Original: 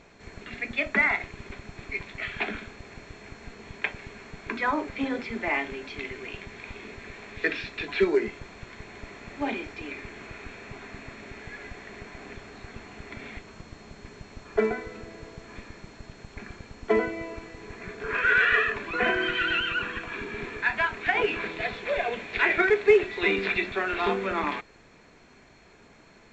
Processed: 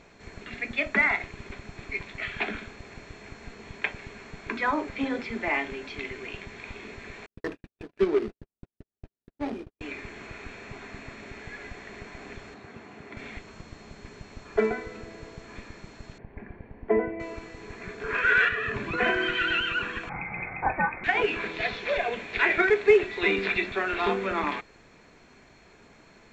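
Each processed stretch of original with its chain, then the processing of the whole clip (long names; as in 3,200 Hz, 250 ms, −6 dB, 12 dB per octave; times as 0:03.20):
0:07.26–0:09.81: running median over 41 samples + low-pass filter 5,400 Hz + noise gate −40 dBFS, range −52 dB
0:12.54–0:13.17: high-pass filter 120 Hz + high-shelf EQ 2,400 Hz −8 dB
0:16.18–0:17.20: low-pass filter 1,900 Hz 24 dB per octave + parametric band 1,300 Hz −12 dB 0.43 octaves
0:18.48–0:18.98: parametric band 120 Hz +12.5 dB 2.1 octaves + downward compressor 12 to 1, threshold −25 dBFS
0:20.09–0:21.04: double-tracking delay 31 ms −13.5 dB + voice inversion scrambler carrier 2,500 Hz
0:21.54–0:21.98: low-pass filter 6,100 Hz 24 dB per octave + high-shelf EQ 3,600 Hz +8 dB
whole clip: no processing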